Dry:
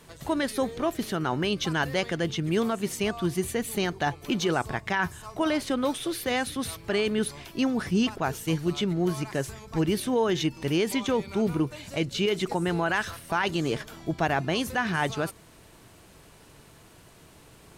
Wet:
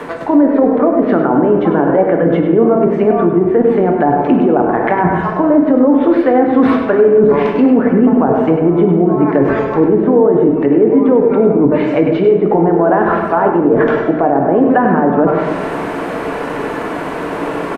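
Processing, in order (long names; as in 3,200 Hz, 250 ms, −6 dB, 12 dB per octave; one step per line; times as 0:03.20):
treble cut that deepens with the level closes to 630 Hz, closed at −23 dBFS
three-way crossover with the lows and the highs turned down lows −21 dB, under 230 Hz, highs −24 dB, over 2,000 Hz
reversed playback
downward compressor 5 to 1, threshold −45 dBFS, peak gain reduction 19.5 dB
reversed playback
single-tap delay 100 ms −9 dB
on a send at −2.5 dB: convolution reverb RT60 1.5 s, pre-delay 4 ms
on the sum: boost into a limiter +35.5 dB
level −1 dB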